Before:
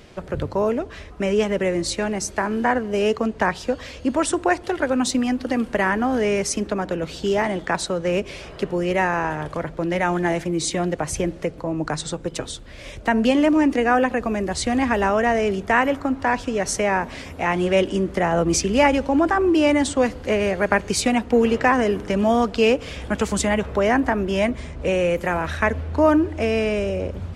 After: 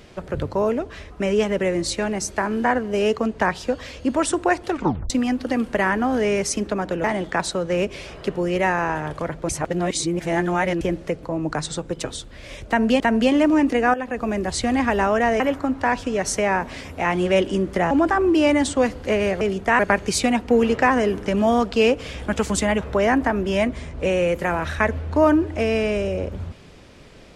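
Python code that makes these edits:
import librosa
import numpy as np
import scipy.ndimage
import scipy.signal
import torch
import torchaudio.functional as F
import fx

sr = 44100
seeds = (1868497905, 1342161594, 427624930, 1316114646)

y = fx.edit(x, sr, fx.tape_stop(start_s=4.7, length_s=0.4),
    fx.cut(start_s=7.04, length_s=0.35),
    fx.reverse_span(start_s=9.84, length_s=1.32),
    fx.repeat(start_s=13.03, length_s=0.32, count=2),
    fx.fade_in_from(start_s=13.97, length_s=0.36, floor_db=-13.5),
    fx.move(start_s=15.43, length_s=0.38, to_s=20.61),
    fx.cut(start_s=18.32, length_s=0.79), tone=tone)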